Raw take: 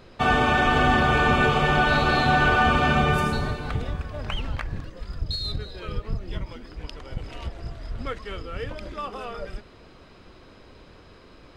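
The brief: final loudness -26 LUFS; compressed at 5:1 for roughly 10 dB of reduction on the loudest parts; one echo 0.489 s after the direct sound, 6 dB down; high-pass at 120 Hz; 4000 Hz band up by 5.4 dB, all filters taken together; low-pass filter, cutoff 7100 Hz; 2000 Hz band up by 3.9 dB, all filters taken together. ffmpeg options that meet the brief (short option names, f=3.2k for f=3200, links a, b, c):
-af "highpass=120,lowpass=7.1k,equalizer=f=2k:t=o:g=4.5,equalizer=f=4k:t=o:g=5.5,acompressor=threshold=-26dB:ratio=5,aecho=1:1:489:0.501,volume=3.5dB"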